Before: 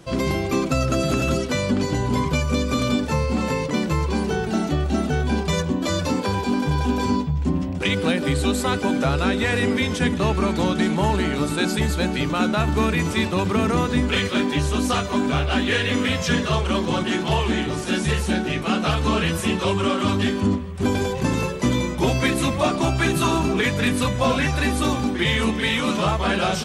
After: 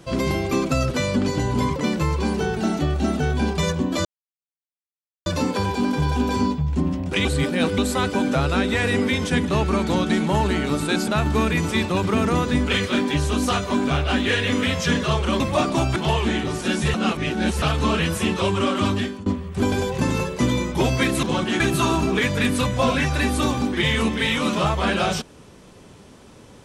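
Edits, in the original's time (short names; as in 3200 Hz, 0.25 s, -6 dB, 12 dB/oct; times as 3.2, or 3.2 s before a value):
0.91–1.46 cut
2.31–3.66 cut
5.95 insert silence 1.21 s
7.94–8.47 reverse
11.77–12.5 cut
16.82–17.19 swap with 22.46–23.02
18.17–18.85 reverse
20.13–20.49 fade out linear, to -24 dB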